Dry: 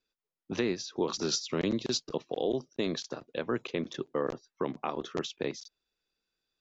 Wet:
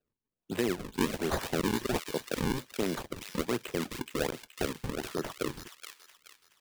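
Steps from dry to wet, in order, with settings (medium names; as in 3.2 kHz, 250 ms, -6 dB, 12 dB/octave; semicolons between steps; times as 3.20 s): decimation with a swept rate 39×, swing 160% 1.3 Hz; feedback echo behind a high-pass 424 ms, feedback 38%, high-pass 2.1 kHz, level -3 dB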